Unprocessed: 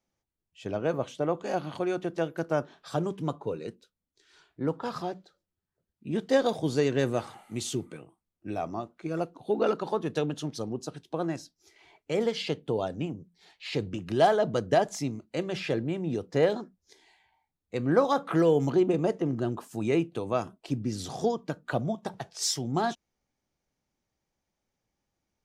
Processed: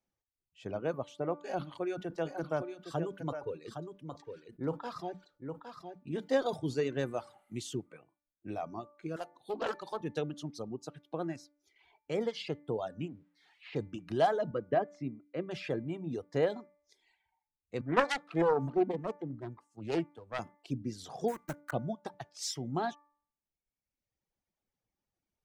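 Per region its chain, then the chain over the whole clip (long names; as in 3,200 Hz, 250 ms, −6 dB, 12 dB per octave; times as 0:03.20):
0:01.40–0:06.84: notch filter 210 Hz, Q 5.9 + single-tap delay 812 ms −7 dB + level that may fall only so fast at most 130 dB per second
0:09.16–0:10.01: spectral tilt +3 dB per octave + hum removal 50.18 Hz, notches 19 + highs frequency-modulated by the lows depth 0.21 ms
0:13.08–0:13.76: spike at every zero crossing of −39 dBFS + low-pass filter 2,200 Hz
0:14.51–0:15.51: band-pass filter 110–2,000 Hz + notch filter 880 Hz, Q 6.7
0:17.81–0:20.39: phase distortion by the signal itself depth 0.5 ms + low-pass filter 10,000 Hz 24 dB per octave + multiband upward and downward expander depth 100%
0:21.28–0:21.74: one scale factor per block 3 bits + flat-topped bell 3,600 Hz −8.5 dB 1.3 octaves
whole clip: high-shelf EQ 4,600 Hz −5.5 dB; reverb reduction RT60 1.2 s; hum removal 292.6 Hz, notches 8; level −5 dB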